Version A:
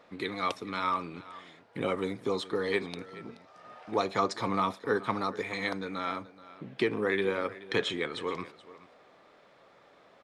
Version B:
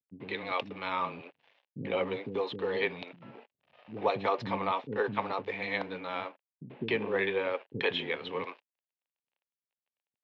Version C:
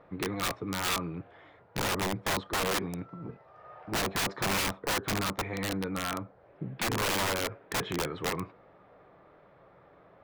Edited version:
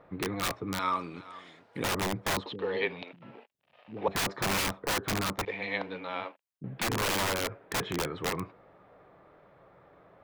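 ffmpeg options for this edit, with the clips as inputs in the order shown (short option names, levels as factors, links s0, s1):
-filter_complex "[1:a]asplit=2[s0][s1];[2:a]asplit=4[s2][s3][s4][s5];[s2]atrim=end=0.792[s6];[0:a]atrim=start=0.788:end=1.842[s7];[s3]atrim=start=1.838:end=2.462[s8];[s0]atrim=start=2.458:end=4.082[s9];[s4]atrim=start=4.078:end=5.452[s10];[s1]atrim=start=5.448:end=6.642[s11];[s5]atrim=start=6.638[s12];[s6][s7]acrossfade=d=0.004:c1=hsin:c2=hsin[s13];[s13][s8]acrossfade=d=0.004:c1=hsin:c2=hsin[s14];[s14][s9]acrossfade=d=0.004:c1=hsin:c2=hsin[s15];[s15][s10]acrossfade=d=0.004:c1=hsin:c2=hsin[s16];[s16][s11]acrossfade=d=0.004:c1=hsin:c2=hsin[s17];[s17][s12]acrossfade=d=0.004:c1=hsin:c2=hsin"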